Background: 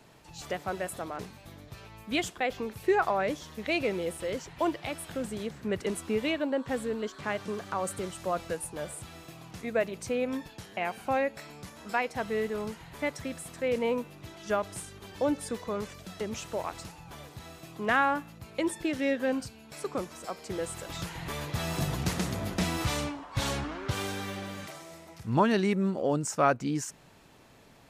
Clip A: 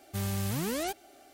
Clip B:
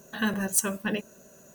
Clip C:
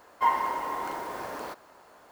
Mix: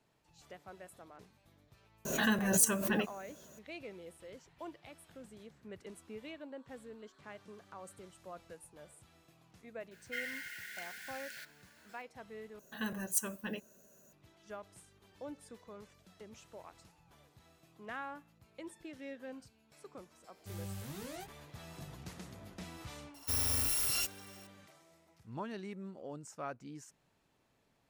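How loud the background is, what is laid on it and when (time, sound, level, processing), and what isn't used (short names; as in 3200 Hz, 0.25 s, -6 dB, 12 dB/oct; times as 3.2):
background -18 dB
2.05 add B -4 dB + backwards sustainer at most 51 dB/s
9.91 add C -2 dB + brick-wall FIR high-pass 1400 Hz
12.59 replace with B -11.5 dB + high shelf 10000 Hz +7 dB
20.32 add A -10.5 dB + chorus 2.9 Hz, delay 20 ms, depth 2.3 ms
23.14 add A -1 dB + FFT order left unsorted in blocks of 256 samples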